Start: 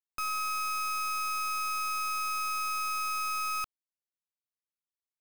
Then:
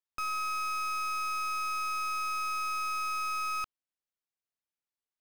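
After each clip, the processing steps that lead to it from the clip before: high shelf 7800 Hz -10.5 dB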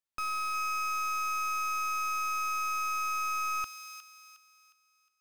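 thin delay 0.36 s, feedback 38%, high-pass 2400 Hz, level -5 dB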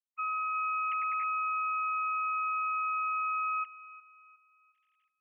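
sine-wave speech

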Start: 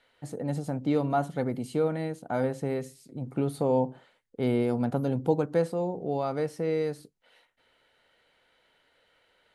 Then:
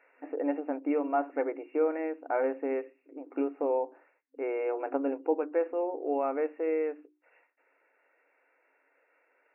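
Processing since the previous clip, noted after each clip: notches 60/120/180/240/300/360 Hz; FFT band-pass 260–2800 Hz; vocal rider within 4 dB 0.5 s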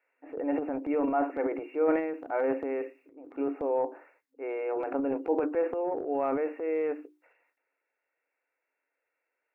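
transient shaper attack -2 dB, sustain +10 dB; three-band expander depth 40%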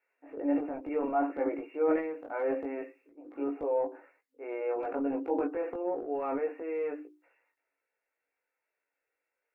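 chorus voices 4, 0.26 Hz, delay 19 ms, depth 2.4 ms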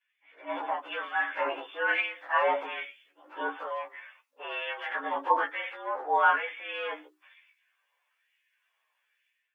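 inharmonic rescaling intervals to 110%; AGC gain up to 12 dB; LFO high-pass sine 1.1 Hz 980–2100 Hz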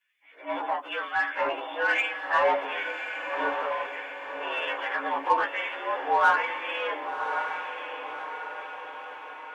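in parallel at -6 dB: soft clip -27 dBFS, distortion -8 dB; on the sum: diffused feedback echo 1.118 s, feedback 54%, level -7 dB

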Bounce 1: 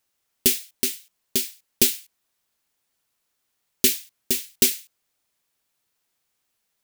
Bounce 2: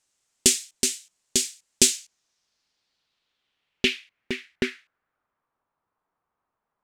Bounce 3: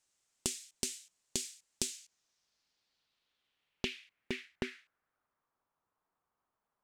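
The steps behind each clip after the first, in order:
low-pass sweep 7600 Hz -> 1100 Hz, 1.86–5.59
compressor 16:1, threshold -27 dBFS, peak gain reduction 16 dB; gain -5 dB

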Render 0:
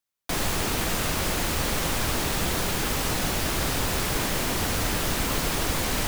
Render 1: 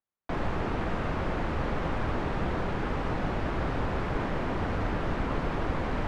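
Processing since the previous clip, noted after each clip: LPF 1500 Hz 12 dB/oct; gain -1.5 dB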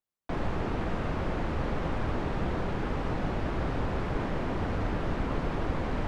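bell 1500 Hz -3 dB 2.4 oct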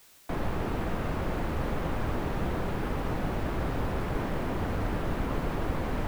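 added noise white -57 dBFS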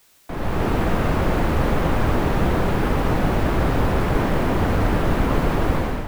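AGC gain up to 11 dB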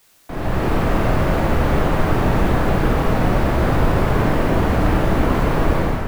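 reverb RT60 1.1 s, pre-delay 18 ms, DRR 1 dB

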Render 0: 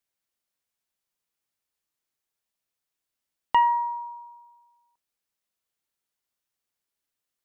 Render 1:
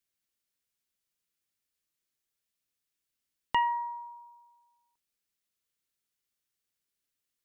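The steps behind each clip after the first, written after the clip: bell 810 Hz -8.5 dB 1.3 oct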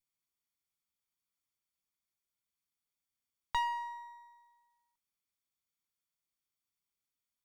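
minimum comb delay 0.88 ms; gain -4.5 dB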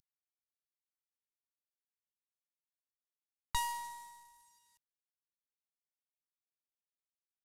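CVSD 64 kbps; tone controls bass +11 dB, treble +15 dB; gain -4 dB

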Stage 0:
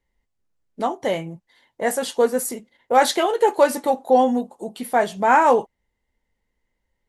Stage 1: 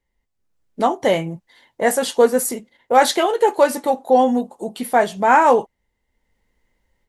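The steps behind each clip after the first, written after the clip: AGC gain up to 9 dB; gain -1 dB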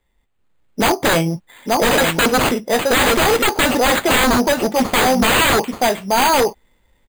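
sample-and-hold 8×; echo 0.88 s -6.5 dB; wavefolder -17 dBFS; gain +8 dB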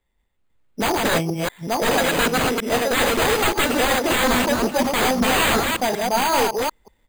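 reverse delay 0.186 s, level -2 dB; gain -6 dB

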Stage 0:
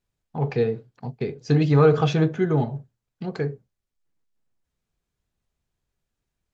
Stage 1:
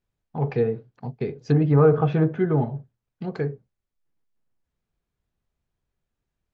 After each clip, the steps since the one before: treble ducked by the level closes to 1500 Hz, closed at -15 dBFS; high shelf 4100 Hz -10 dB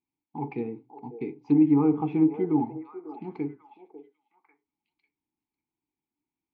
vowel filter u; delay with a stepping band-pass 0.546 s, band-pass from 560 Hz, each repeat 1.4 oct, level -7 dB; gain +7.5 dB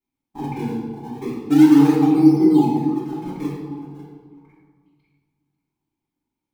in parallel at -9 dB: decimation with a swept rate 40×, swing 160% 0.32 Hz; on the sum: reverb RT60 1.6 s, pre-delay 3 ms, DRR -9.5 dB; gain -5.5 dB

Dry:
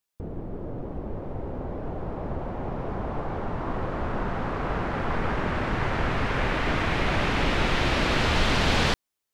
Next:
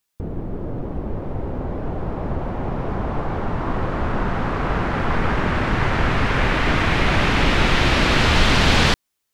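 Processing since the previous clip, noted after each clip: bell 570 Hz -3 dB 1.6 oct; gain +7.5 dB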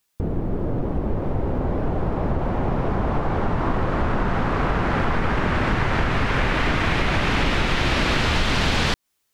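compressor, threshold -21 dBFS, peak gain reduction 10.5 dB; gain +4 dB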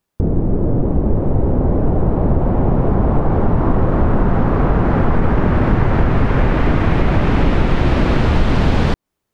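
tilt shelf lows +9 dB, about 1300 Hz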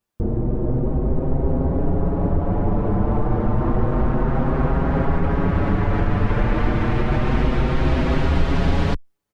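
endless flanger 6.3 ms +0.3 Hz; gain -2 dB

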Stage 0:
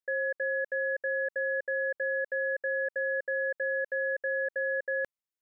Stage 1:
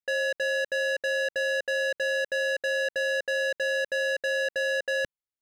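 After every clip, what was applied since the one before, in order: tone controls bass +7 dB, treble -3 dB; sample leveller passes 3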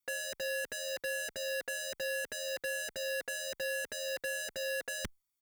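high shelf 6300 Hz +10 dB; comb 0.9 ms, depth 77%; endless flanger 3.6 ms -1.9 Hz; gain +3.5 dB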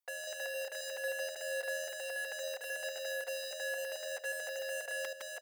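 reverse delay 0.27 s, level -1 dB; ladder high-pass 590 Hz, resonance 55%; outdoor echo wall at 27 m, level -12 dB; gain +4 dB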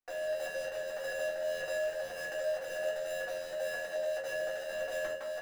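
median filter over 15 samples; shoebox room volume 200 m³, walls furnished, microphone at 3.5 m

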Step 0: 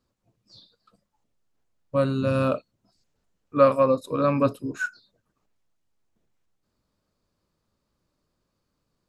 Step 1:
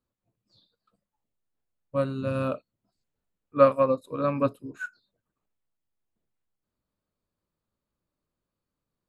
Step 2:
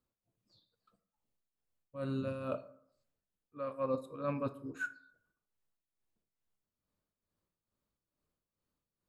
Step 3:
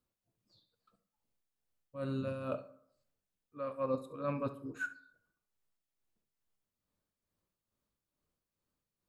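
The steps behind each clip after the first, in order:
bell 5500 Hz -9.5 dB 0.5 oct; upward expander 1.5:1, over -31 dBFS
reverse; compressor 10:1, threshold -28 dBFS, peak gain reduction 16.5 dB; reverse; tremolo 2.3 Hz, depth 65%; reverb RT60 0.65 s, pre-delay 12 ms, DRR 12 dB; gain -1.5 dB
flutter echo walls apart 11.8 m, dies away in 0.25 s

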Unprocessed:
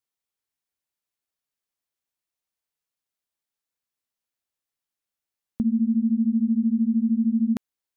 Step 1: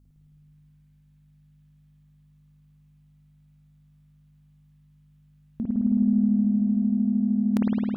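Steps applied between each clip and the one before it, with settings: negative-ratio compressor -26 dBFS, ratio -1; hum 50 Hz, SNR 25 dB; spring tank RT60 3.8 s, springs 53 ms, chirp 55 ms, DRR -7 dB; gain -1.5 dB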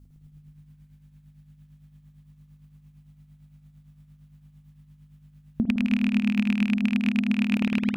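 rattling part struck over -24 dBFS, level -16 dBFS; compressor 6:1, threshold -26 dBFS, peak gain reduction 9 dB; tremolo triangle 8.8 Hz, depth 65%; gain +8.5 dB

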